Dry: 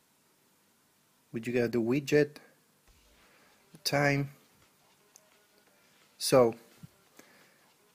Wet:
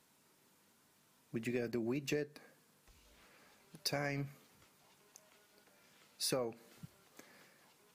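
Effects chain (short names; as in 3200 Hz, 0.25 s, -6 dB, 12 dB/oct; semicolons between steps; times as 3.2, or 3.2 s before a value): compressor 10:1, threshold -31 dBFS, peak gain reduction 14.5 dB; gain -2.5 dB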